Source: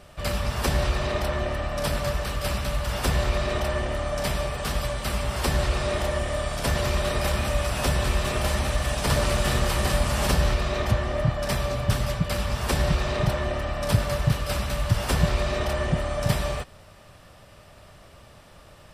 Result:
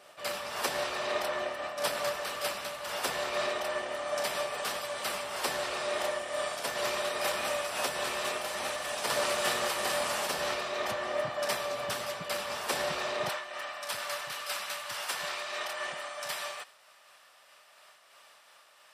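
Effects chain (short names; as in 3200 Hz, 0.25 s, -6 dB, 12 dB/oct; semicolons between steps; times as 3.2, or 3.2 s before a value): HPF 470 Hz 12 dB/oct, from 13.29 s 1000 Hz; noise-modulated level, depth 60%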